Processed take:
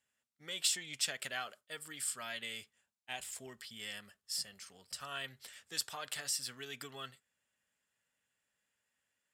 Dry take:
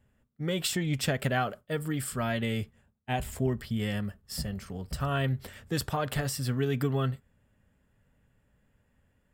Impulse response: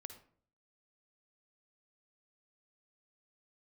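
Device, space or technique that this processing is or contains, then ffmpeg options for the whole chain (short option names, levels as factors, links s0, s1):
piezo pickup straight into a mixer: -af "lowpass=7300,aderivative,volume=1.68"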